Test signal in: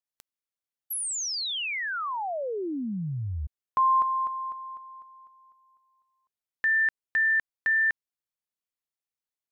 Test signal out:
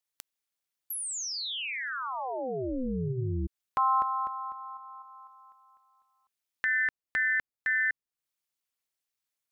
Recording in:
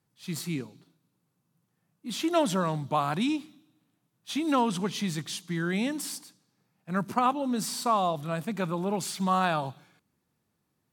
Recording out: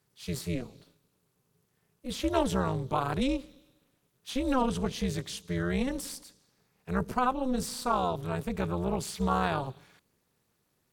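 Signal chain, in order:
low-shelf EQ 380 Hz +5 dB
amplitude modulation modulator 260 Hz, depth 85%
one half of a high-frequency compander encoder only

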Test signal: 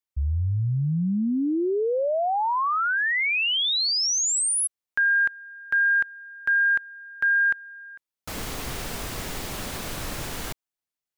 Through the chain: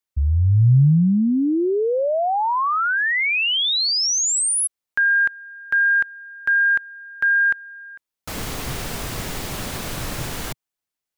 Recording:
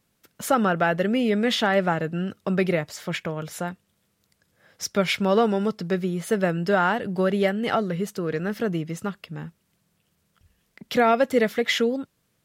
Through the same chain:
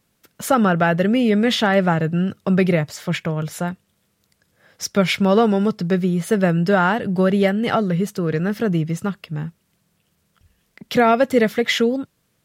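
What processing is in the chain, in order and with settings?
dynamic equaliser 130 Hz, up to +8 dB, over −42 dBFS, Q 1.3
level +3.5 dB

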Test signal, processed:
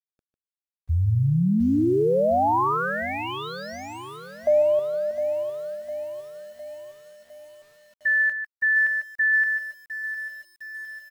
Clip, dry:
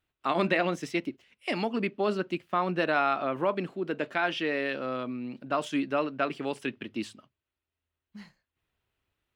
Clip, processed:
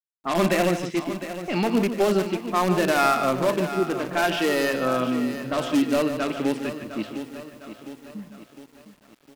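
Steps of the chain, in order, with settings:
in parallel at −4 dB: wrap-around overflow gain 22 dB
on the sum: harmonic and percussive parts rebalanced harmonic +9 dB
low-pass that shuts in the quiet parts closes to 380 Hz, open at −17 dBFS
bit reduction 10 bits
on a send: single-tap delay 149 ms −9.5 dB
on the sum: feedback echo at a low word length 707 ms, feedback 55%, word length 7 bits, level −11.5 dB
level −3.5 dB

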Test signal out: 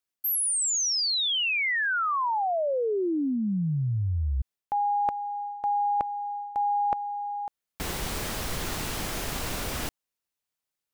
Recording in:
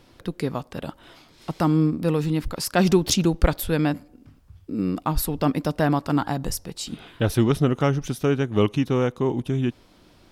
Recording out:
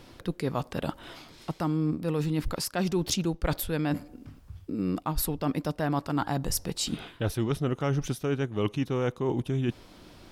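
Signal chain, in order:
dynamic equaliser 240 Hz, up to −3 dB, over −37 dBFS, Q 4.6
reversed playback
downward compressor 5 to 1, threshold −29 dBFS
reversed playback
level +3.5 dB

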